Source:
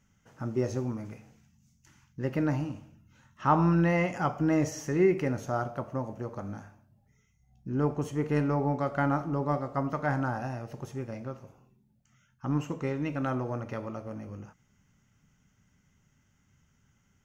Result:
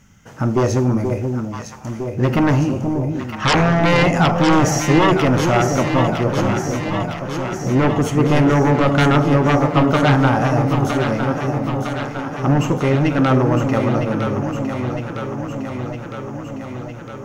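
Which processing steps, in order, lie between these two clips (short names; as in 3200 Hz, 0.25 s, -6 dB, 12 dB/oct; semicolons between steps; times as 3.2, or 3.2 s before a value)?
sine folder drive 13 dB, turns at -11 dBFS; echo with dull and thin repeats by turns 0.479 s, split 830 Hz, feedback 82%, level -5 dB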